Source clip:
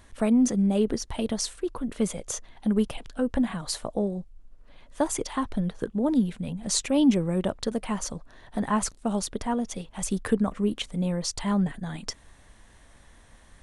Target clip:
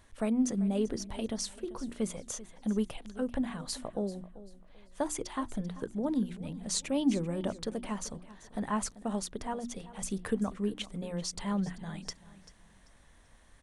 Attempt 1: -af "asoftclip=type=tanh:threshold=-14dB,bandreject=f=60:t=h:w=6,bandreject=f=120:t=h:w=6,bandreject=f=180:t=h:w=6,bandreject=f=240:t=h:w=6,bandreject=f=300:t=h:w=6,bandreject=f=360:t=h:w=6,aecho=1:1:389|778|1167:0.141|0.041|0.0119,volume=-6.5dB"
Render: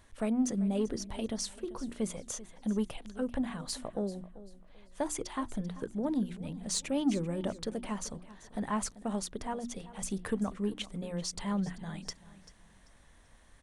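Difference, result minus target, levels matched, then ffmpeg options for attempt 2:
soft clip: distortion +18 dB
-af "asoftclip=type=tanh:threshold=-4dB,bandreject=f=60:t=h:w=6,bandreject=f=120:t=h:w=6,bandreject=f=180:t=h:w=6,bandreject=f=240:t=h:w=6,bandreject=f=300:t=h:w=6,bandreject=f=360:t=h:w=6,aecho=1:1:389|778|1167:0.141|0.041|0.0119,volume=-6.5dB"

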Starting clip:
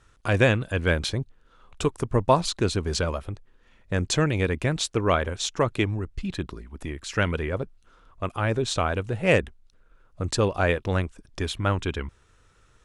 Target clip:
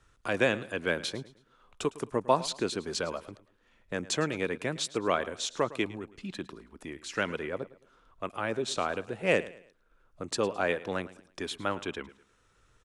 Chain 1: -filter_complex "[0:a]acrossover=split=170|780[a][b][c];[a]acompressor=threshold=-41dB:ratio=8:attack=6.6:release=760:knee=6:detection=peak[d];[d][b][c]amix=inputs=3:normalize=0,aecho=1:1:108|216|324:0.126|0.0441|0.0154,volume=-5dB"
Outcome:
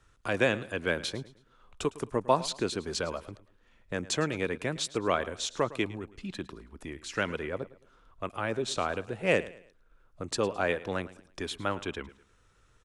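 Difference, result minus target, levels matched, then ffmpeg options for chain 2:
compressor: peak gain reduction -9 dB
-filter_complex "[0:a]acrossover=split=170|780[a][b][c];[a]acompressor=threshold=-51.5dB:ratio=8:attack=6.6:release=760:knee=6:detection=peak[d];[d][b][c]amix=inputs=3:normalize=0,aecho=1:1:108|216|324:0.126|0.0441|0.0154,volume=-5dB"

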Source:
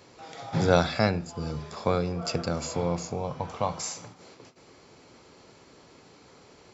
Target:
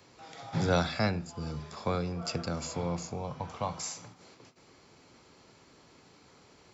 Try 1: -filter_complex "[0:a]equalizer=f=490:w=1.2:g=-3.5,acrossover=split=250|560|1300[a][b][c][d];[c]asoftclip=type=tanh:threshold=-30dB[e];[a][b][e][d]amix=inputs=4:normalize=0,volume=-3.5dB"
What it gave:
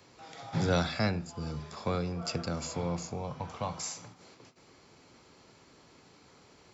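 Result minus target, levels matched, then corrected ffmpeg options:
soft clip: distortion +13 dB
-filter_complex "[0:a]equalizer=f=490:w=1.2:g=-3.5,acrossover=split=250|560|1300[a][b][c][d];[c]asoftclip=type=tanh:threshold=-19dB[e];[a][b][e][d]amix=inputs=4:normalize=0,volume=-3.5dB"

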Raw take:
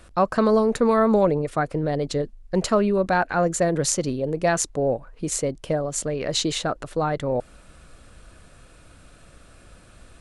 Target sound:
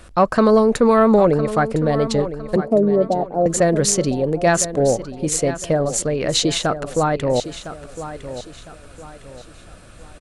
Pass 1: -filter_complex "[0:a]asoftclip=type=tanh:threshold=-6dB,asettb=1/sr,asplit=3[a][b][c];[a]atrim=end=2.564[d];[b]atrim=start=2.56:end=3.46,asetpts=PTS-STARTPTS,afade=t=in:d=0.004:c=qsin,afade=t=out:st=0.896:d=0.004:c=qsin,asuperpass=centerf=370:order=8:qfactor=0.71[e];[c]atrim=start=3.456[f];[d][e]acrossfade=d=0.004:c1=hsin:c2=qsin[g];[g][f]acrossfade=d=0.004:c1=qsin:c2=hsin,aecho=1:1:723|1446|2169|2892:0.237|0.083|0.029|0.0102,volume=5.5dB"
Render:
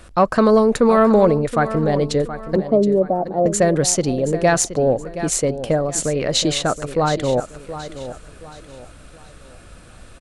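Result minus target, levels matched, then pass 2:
echo 0.285 s early
-filter_complex "[0:a]asoftclip=type=tanh:threshold=-6dB,asettb=1/sr,asplit=3[a][b][c];[a]atrim=end=2.564[d];[b]atrim=start=2.56:end=3.46,asetpts=PTS-STARTPTS,afade=t=in:d=0.004:c=qsin,afade=t=out:st=0.896:d=0.004:c=qsin,asuperpass=centerf=370:order=8:qfactor=0.71[e];[c]atrim=start=3.456[f];[d][e]acrossfade=d=0.004:c1=hsin:c2=qsin[g];[g][f]acrossfade=d=0.004:c1=qsin:c2=hsin,aecho=1:1:1008|2016|3024|4032:0.237|0.083|0.029|0.0102,volume=5.5dB"

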